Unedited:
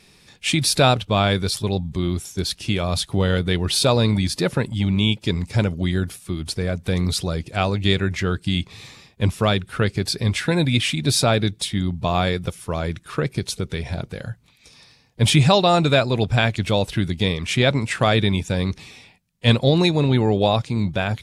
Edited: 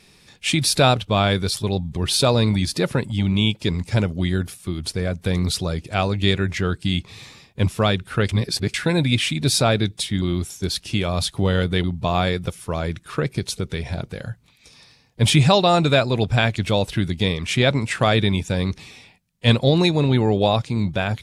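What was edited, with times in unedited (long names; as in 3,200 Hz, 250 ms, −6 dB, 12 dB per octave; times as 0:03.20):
0:01.97–0:03.59: move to 0:11.84
0:09.91–0:10.36: reverse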